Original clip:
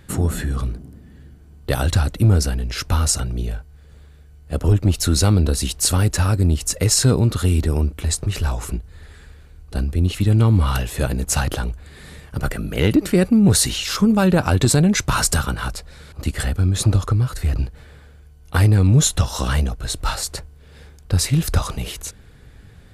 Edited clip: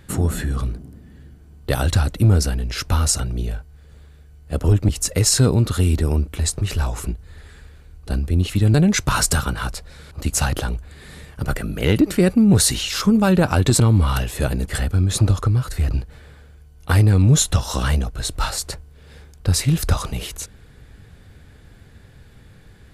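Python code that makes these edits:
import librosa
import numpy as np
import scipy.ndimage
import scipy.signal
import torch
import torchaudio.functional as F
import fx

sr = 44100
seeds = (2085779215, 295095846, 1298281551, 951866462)

y = fx.edit(x, sr, fx.cut(start_s=4.89, length_s=1.65),
    fx.swap(start_s=10.39, length_s=0.88, other_s=14.75, other_length_s=1.58), tone=tone)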